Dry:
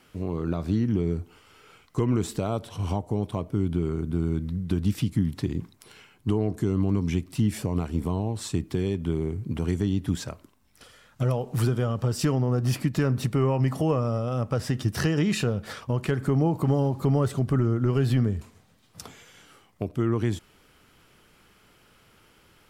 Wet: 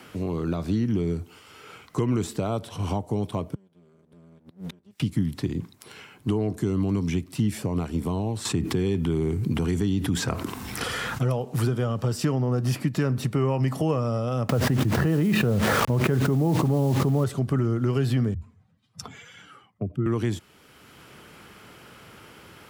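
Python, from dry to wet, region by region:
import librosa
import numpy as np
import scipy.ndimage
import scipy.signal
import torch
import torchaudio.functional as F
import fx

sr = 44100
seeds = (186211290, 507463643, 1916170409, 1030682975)

y = fx.chain(x, sr, fx.lower_of_two(delay_ms=5.0),
    fx.gate_flip(shuts_db=-29.0, range_db=-34), at=(3.54, 5.0))
y = fx.chain(y, sr, fx.notch(hz=590.0, q=5.8),
    fx.env_flatten(amount_pct=70), at=(8.45, 11.28))
y = fx.chain(y, sr, fx.spacing_loss(db_at_10k=40),
    fx.quant_dither(seeds[0], bits=8, dither='none'),
    fx.env_flatten(amount_pct=100), at=(14.49, 17.24))
y = fx.chain(y, sr, fx.spec_expand(power=1.7),
    fx.peak_eq(hz=380.0, db=-8.0, octaves=1.6),
    fx.band_widen(depth_pct=40), at=(18.34, 20.06))
y = scipy.signal.sosfilt(scipy.signal.butter(2, 81.0, 'highpass', fs=sr, output='sos'), y)
y = fx.band_squash(y, sr, depth_pct=40)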